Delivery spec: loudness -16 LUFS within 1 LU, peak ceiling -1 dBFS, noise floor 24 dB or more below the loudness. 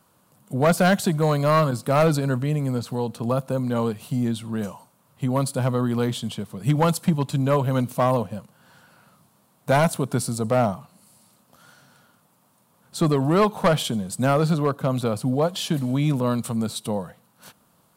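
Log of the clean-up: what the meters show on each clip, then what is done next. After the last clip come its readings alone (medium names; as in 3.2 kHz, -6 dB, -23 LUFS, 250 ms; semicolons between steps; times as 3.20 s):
clipped samples 0.8%; clipping level -12.0 dBFS; loudness -23.0 LUFS; peak level -12.0 dBFS; loudness target -16.0 LUFS
-> clip repair -12 dBFS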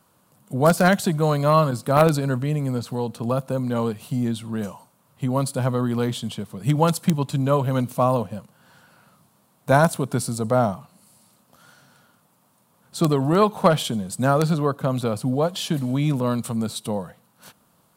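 clipped samples 0.0%; loudness -22.5 LUFS; peak level -3.0 dBFS; loudness target -16.0 LUFS
-> trim +6.5 dB; peak limiter -1 dBFS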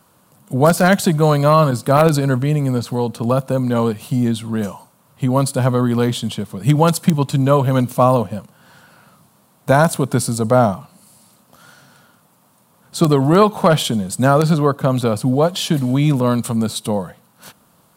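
loudness -16.5 LUFS; peak level -1.0 dBFS; noise floor -56 dBFS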